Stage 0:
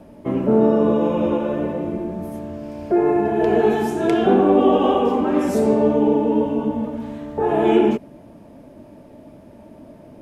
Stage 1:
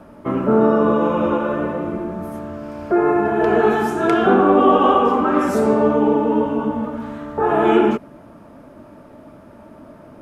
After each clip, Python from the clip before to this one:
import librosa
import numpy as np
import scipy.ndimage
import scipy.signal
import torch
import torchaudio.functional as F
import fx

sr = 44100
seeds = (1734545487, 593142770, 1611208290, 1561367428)

y = fx.peak_eq(x, sr, hz=1300.0, db=14.0, octaves=0.7)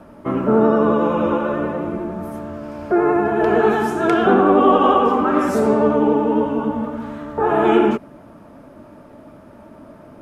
y = fx.vibrato(x, sr, rate_hz=11.0, depth_cents=32.0)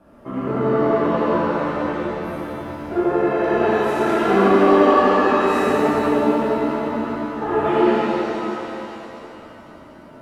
y = fx.rev_shimmer(x, sr, seeds[0], rt60_s=3.0, semitones=7, shimmer_db=-8, drr_db=-9.5)
y = y * 10.0 ** (-12.0 / 20.0)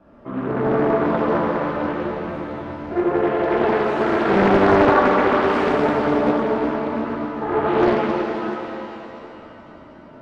y = fx.air_absorb(x, sr, metres=120.0)
y = fx.doppler_dist(y, sr, depth_ms=0.63)